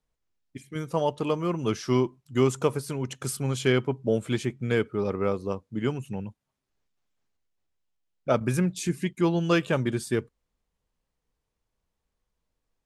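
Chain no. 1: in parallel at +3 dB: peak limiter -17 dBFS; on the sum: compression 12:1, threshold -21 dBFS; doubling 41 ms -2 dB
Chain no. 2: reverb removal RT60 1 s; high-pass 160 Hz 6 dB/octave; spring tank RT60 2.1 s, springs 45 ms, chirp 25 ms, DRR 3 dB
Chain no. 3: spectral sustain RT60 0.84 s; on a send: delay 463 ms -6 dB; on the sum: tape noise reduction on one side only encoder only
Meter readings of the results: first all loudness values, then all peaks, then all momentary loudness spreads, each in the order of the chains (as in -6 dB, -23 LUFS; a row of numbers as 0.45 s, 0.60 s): -25.5 LUFS, -28.0 LUFS, -24.5 LUFS; -10.0 dBFS, -9.5 dBFS, -7.5 dBFS; 5 LU, 12 LU, 12 LU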